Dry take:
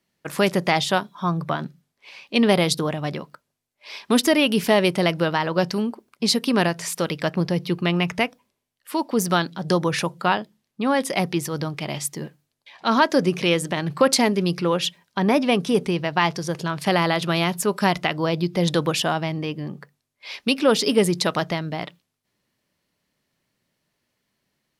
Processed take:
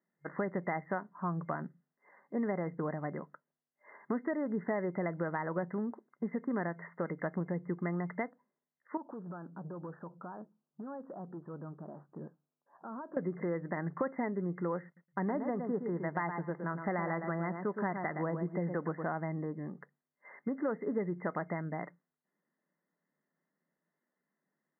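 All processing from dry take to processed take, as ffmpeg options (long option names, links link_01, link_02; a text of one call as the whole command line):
ffmpeg -i in.wav -filter_complex "[0:a]asettb=1/sr,asplit=3[link_01][link_02][link_03];[link_01]atrim=end=8.974[link_04];[link_02]atrim=start=8.97:end=13.17,asetpts=PTS-STARTPTS,afade=type=in:duration=0.004:curve=qsin,afade=type=out:start_time=4.196:duration=0.004:curve=qsin,acompressor=threshold=-29dB:ratio=6:attack=3.2:release=140:knee=1:detection=peak,asoftclip=type=hard:threshold=-29.5dB,asuperstop=centerf=2100:order=4:qfactor=1.2[link_05];[link_03]atrim=start=13.166[link_06];[link_04][link_05]acrossfade=duration=0.004:curve1=hsin:curve2=qsin[link_07];[link_07][link_06]acrossfade=duration=0.004:curve1=qsin:curve2=hsin,asettb=1/sr,asplit=3[link_08][link_09][link_10];[link_08]atrim=end=14.854[link_11];[link_09]atrim=start=14.85:end=19.12,asetpts=PTS-STARTPTS,afade=type=in:duration=0.004:curve=qsin,afade=type=out:start_time=4.266:duration=0.004:curve=qsin,aeval=exprs='sgn(val(0))*max(abs(val(0))-0.00422,0)':channel_layout=same,asplit=2[link_12][link_13];[link_13]adelay=115,lowpass=frequency=1900:poles=1,volume=-7.5dB,asplit=2[link_14][link_15];[link_15]adelay=115,lowpass=frequency=1900:poles=1,volume=0.16,asplit=2[link_16][link_17];[link_17]adelay=115,lowpass=frequency=1900:poles=1,volume=0.16[link_18];[link_12][link_14][link_16][link_18]amix=inputs=4:normalize=0,atrim=end_sample=188307[link_19];[link_10]atrim=start=19.116[link_20];[link_11][link_19]acrossfade=duration=0.004:curve1=hsin:curve2=qsin[link_21];[link_21][link_20]acrossfade=duration=0.004:curve1=qsin:curve2=hsin,afftfilt=real='re*between(b*sr/4096,140,2100)':imag='im*between(b*sr/4096,140,2100)':win_size=4096:overlap=0.75,acompressor=threshold=-22dB:ratio=4,volume=-9dB" out.wav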